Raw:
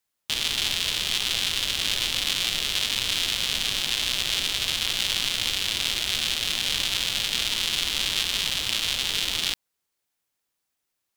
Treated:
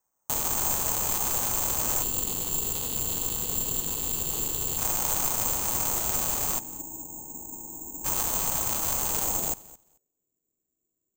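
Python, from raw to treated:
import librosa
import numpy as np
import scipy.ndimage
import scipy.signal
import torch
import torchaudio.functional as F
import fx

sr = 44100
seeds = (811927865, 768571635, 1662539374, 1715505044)

p1 = fx.rattle_buzz(x, sr, strikes_db=-42.0, level_db=-22.0)
p2 = fx.spec_erase(p1, sr, start_s=2.03, length_s=2.75, low_hz=520.0, high_hz=2600.0)
p3 = fx.formant_cascade(p2, sr, vowel='u', at=(6.58, 8.04), fade=0.02)
p4 = (np.mod(10.0 ** (18.0 / 20.0) * p3 + 1.0, 2.0) - 1.0) / 10.0 ** (18.0 / 20.0)
p5 = p3 + (p4 * librosa.db_to_amplitude(-8.0))
p6 = fx.filter_sweep_lowpass(p5, sr, from_hz=960.0, to_hz=350.0, start_s=9.2, end_s=10.33, q=2.1)
p7 = p6 + fx.echo_feedback(p6, sr, ms=219, feedback_pct=15, wet_db=-20.0, dry=0)
y = (np.kron(p7[::6], np.eye(6)[0]) * 6)[:len(p7)]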